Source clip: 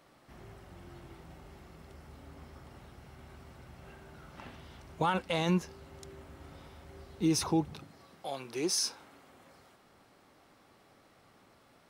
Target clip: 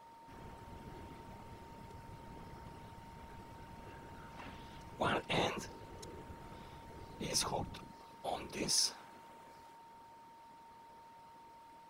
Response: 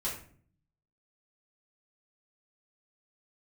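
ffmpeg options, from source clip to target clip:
-af "afftfilt=real='re*lt(hypot(re,im),0.2)':imag='im*lt(hypot(re,im),0.2)':win_size=1024:overlap=0.75,afftfilt=real='hypot(re,im)*cos(2*PI*random(0))':imag='hypot(re,im)*sin(2*PI*random(1))':win_size=512:overlap=0.75,aeval=exprs='val(0)+0.001*sin(2*PI*920*n/s)':channel_layout=same,volume=4.5dB"

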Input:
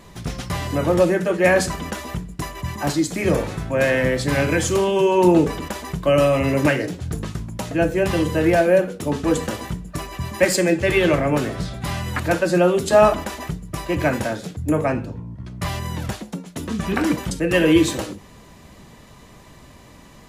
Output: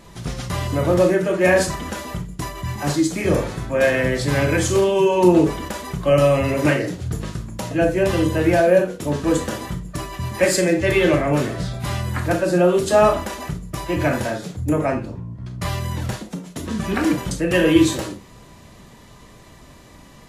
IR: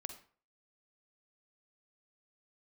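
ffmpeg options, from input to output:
-filter_complex "[0:a]asettb=1/sr,asplit=3[link_01][link_02][link_03];[link_01]atrim=end=12.004[link_04];[link_02]atrim=start=12:end=12.7,asetpts=PTS-STARTPTS,afade=type=in:duration=0.004:curve=qsin,afade=type=out:start_time=0.696:duration=0.004:curve=qsin,equalizer=frequency=3300:width=0.48:gain=-3.5[link_05];[link_03]atrim=start=12.696[link_06];[link_04][link_05]acrossfade=duration=0.004:curve1=hsin:curve2=qsin[link_07];[link_07][link_06]acrossfade=duration=0.004:curve1=qsin:curve2=hsin[link_08];[1:a]atrim=start_sample=2205,afade=type=out:start_time=0.19:duration=0.01,atrim=end_sample=8820,asetrate=70560,aresample=44100[link_09];[link_08][link_09]afir=irnorm=-1:irlink=0,volume=7.5dB" -ar 48000 -c:a libvorbis -b:a 32k

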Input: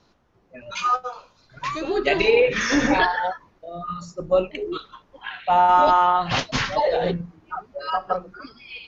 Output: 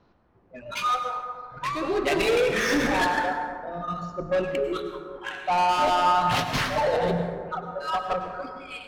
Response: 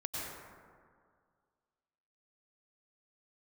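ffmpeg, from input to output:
-filter_complex "[0:a]asoftclip=type=tanh:threshold=-19dB,adynamicsmooth=sensitivity=7:basefreq=2600,asplit=2[link_01][link_02];[1:a]atrim=start_sample=2205[link_03];[link_02][link_03]afir=irnorm=-1:irlink=0,volume=-4.5dB[link_04];[link_01][link_04]amix=inputs=2:normalize=0,volume=-3dB"

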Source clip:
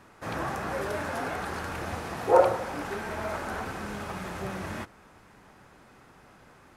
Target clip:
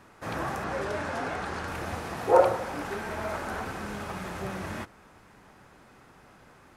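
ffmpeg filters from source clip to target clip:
ffmpeg -i in.wav -filter_complex "[0:a]asettb=1/sr,asplit=3[link_01][link_02][link_03];[link_01]atrim=end=0.644[link_04];[link_02]atrim=start=0.64:end=1.68,asetpts=PTS-STARTPTS,afade=type=in:duration=0.004:curve=qsin,afade=type=out:start_time=1.036:duration=0.004:curve=qsin,lowpass=8100[link_05];[link_03]atrim=start=1.676[link_06];[link_04][link_05]acrossfade=duration=0.004:curve1=hsin:curve2=qsin[link_07];[link_07][link_06]acrossfade=duration=0.004:curve1=qsin:curve2=hsin" out.wav

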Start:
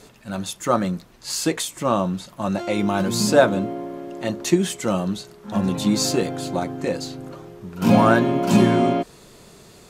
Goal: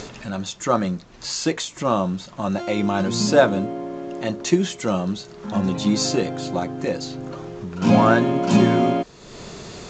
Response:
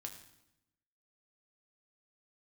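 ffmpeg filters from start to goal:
-af "acompressor=mode=upward:threshold=-25dB:ratio=2.5" -ar 16000 -c:a pcm_alaw

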